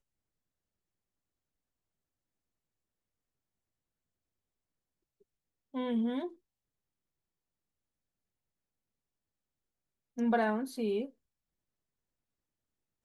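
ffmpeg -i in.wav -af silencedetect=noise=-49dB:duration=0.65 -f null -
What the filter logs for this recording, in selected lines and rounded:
silence_start: 0.00
silence_end: 5.74 | silence_duration: 5.74
silence_start: 6.33
silence_end: 10.17 | silence_duration: 3.84
silence_start: 11.10
silence_end: 13.04 | silence_duration: 1.95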